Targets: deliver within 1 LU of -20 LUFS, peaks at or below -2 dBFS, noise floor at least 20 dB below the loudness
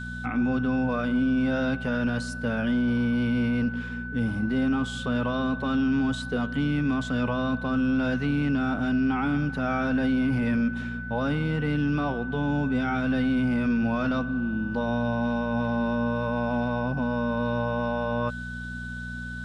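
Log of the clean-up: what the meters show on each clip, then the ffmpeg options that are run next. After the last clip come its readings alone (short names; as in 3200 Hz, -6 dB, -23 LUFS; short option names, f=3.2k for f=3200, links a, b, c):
hum 60 Hz; harmonics up to 240 Hz; hum level -34 dBFS; steady tone 1500 Hz; tone level -36 dBFS; loudness -26.5 LUFS; peak -15.5 dBFS; loudness target -20.0 LUFS
-> -af "bandreject=f=60:t=h:w=4,bandreject=f=120:t=h:w=4,bandreject=f=180:t=h:w=4,bandreject=f=240:t=h:w=4"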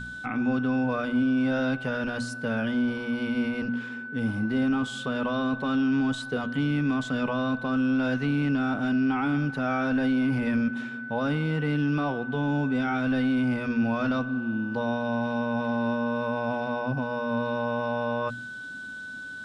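hum none; steady tone 1500 Hz; tone level -36 dBFS
-> -af "bandreject=f=1.5k:w=30"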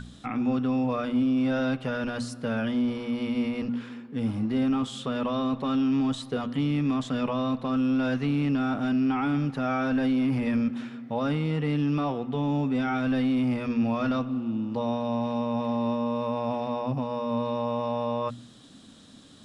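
steady tone none; loudness -27.5 LUFS; peak -16.5 dBFS; loudness target -20.0 LUFS
-> -af "volume=7.5dB"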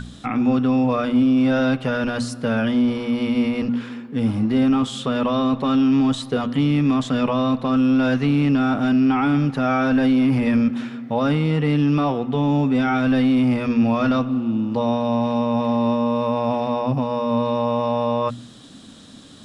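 loudness -20.0 LUFS; peak -9.0 dBFS; noise floor -42 dBFS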